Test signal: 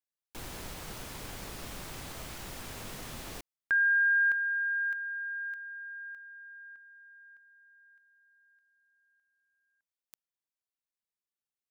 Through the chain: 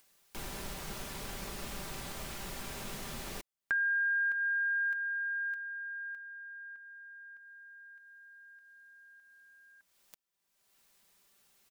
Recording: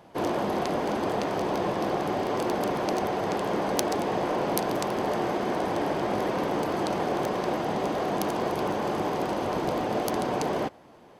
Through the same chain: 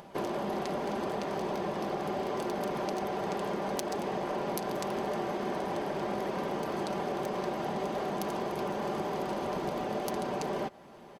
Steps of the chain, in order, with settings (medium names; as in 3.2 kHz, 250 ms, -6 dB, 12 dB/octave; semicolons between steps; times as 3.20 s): compression 6:1, threshold -31 dBFS; comb 5.1 ms, depth 40%; upward compressor, threshold -47 dBFS